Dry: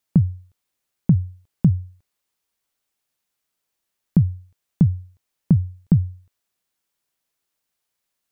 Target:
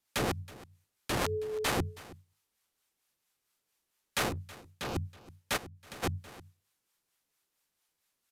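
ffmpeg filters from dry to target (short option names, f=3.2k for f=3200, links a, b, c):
-filter_complex "[0:a]equalizer=f=640:t=o:w=0.24:g=-3.5,bandreject=f=50:t=h:w=6,bandreject=f=100:t=h:w=6,bandreject=f=150:t=h:w=6,bandreject=f=200:t=h:w=6,bandreject=f=250:t=h:w=6,bandreject=f=300:t=h:w=6,acontrast=55,asettb=1/sr,asplit=3[a][b][c];[a]atrim=end=1.104[d];[b]atrim=start=1.1:end=1.68,asetpts=PTS-STARTPTS,afade=t=in:d=0.004:c=qsin,afade=t=out:st=0.576:d=0.004:c=qsin,aeval=exprs='val(0)+0.0501*sin(2*PI*430*n/s)':c=same[e];[c]atrim=start=1.676[f];[d][e]acrossfade=d=0.004:c1=hsin:c2=qsin[g];[g][f]acrossfade=d=0.004:c1=qsin:c2=hsin,aeval=exprs='(mod(8.91*val(0)+1,2)-1)/8.91':c=same,acrossover=split=630[h][i];[h]aeval=exprs='val(0)*(1-0.5/2+0.5/2*cos(2*PI*4.4*n/s))':c=same[j];[i]aeval=exprs='val(0)*(1-0.5/2-0.5/2*cos(2*PI*4.4*n/s))':c=same[k];[j][k]amix=inputs=2:normalize=0,asplit=3[l][m][n];[l]afade=t=out:st=4.28:d=0.02[o];[m]asoftclip=type=hard:threshold=-31dB,afade=t=in:st=4.28:d=0.02,afade=t=out:st=4.95:d=0.02[p];[n]afade=t=in:st=4.95:d=0.02[q];[o][p][q]amix=inputs=3:normalize=0,asplit=2[r][s];[s]aecho=0:1:322:0.106[t];[r][t]amix=inputs=2:normalize=0,asplit=3[u][v][w];[u]afade=t=out:st=5.56:d=0.02[x];[v]acompressor=threshold=-41dB:ratio=8,afade=t=in:st=5.56:d=0.02,afade=t=out:st=6.02:d=0.02[y];[w]afade=t=in:st=6.02:d=0.02[z];[x][y][z]amix=inputs=3:normalize=0,volume=-3.5dB" -ar 32000 -c:a aac -b:a 96k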